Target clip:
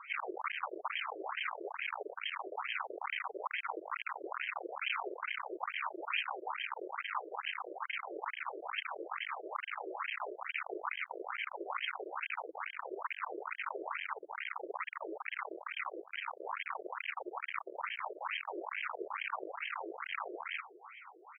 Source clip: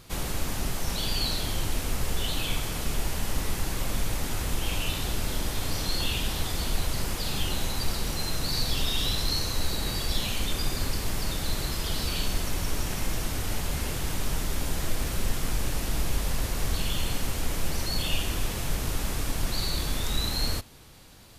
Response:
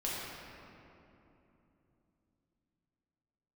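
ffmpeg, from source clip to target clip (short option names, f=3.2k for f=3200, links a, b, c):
-af "bandreject=f=680:w=12,aecho=1:1:0.9:0.91,aresample=16000,asoftclip=type=hard:threshold=-29.5dB,aresample=44100,afftfilt=real='re*between(b*sr/1024,450*pow(2300/450,0.5+0.5*sin(2*PI*2.3*pts/sr))/1.41,450*pow(2300/450,0.5+0.5*sin(2*PI*2.3*pts/sr))*1.41)':imag='im*between(b*sr/1024,450*pow(2300/450,0.5+0.5*sin(2*PI*2.3*pts/sr))/1.41,450*pow(2300/450,0.5+0.5*sin(2*PI*2.3*pts/sr))*1.41)':win_size=1024:overlap=0.75,volume=8.5dB"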